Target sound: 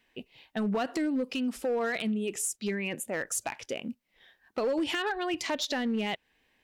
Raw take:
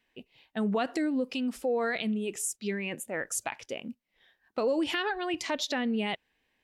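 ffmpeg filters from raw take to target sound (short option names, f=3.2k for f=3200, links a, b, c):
-af "acompressor=threshold=-40dB:ratio=1.5,volume=29dB,asoftclip=hard,volume=-29dB,volume=5dB"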